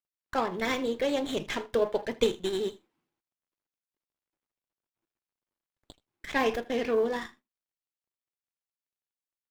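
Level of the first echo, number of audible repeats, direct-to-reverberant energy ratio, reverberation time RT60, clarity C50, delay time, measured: -20.5 dB, 1, none, none, none, 79 ms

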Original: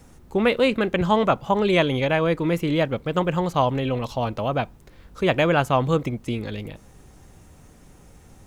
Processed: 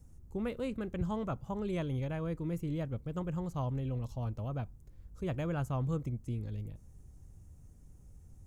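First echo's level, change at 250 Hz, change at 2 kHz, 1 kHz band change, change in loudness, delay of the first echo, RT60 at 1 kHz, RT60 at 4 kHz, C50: none, -13.0 dB, -23.0 dB, -20.5 dB, -14.5 dB, none, none, none, none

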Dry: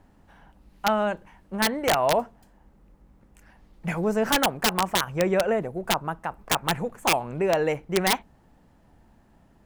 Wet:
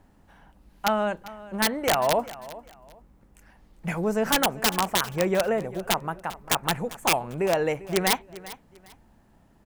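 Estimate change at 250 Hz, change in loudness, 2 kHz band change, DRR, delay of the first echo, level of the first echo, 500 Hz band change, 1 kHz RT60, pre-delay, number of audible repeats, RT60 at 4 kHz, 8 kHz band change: -1.0 dB, -0.5 dB, -0.5 dB, none, 0.397 s, -17.5 dB, -1.0 dB, none, none, 2, none, +1.5 dB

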